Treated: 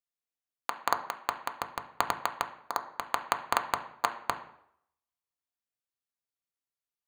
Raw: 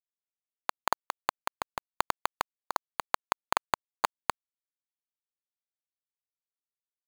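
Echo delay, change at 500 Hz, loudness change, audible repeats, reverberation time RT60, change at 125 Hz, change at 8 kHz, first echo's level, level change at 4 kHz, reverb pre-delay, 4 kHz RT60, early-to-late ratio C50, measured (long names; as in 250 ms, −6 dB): no echo audible, +1.0 dB, 0.0 dB, no echo audible, 0.70 s, +1.0 dB, −1.0 dB, no echo audible, −0.5 dB, 3 ms, 0.55 s, 12.0 dB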